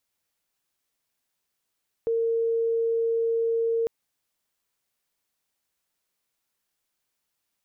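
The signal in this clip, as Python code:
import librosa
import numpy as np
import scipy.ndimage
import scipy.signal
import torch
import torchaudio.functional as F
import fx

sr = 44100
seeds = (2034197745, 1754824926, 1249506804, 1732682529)

y = 10.0 ** (-21.5 / 20.0) * np.sin(2.0 * np.pi * (458.0 * (np.arange(round(1.8 * sr)) / sr)))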